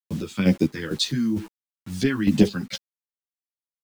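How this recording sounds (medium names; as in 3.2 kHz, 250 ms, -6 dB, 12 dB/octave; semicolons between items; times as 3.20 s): phasing stages 2, 2.2 Hz, lowest notch 570–1500 Hz; a quantiser's noise floor 8-bit, dither none; chopped level 2.2 Hz, depth 60%, duty 45%; a shimmering, thickened sound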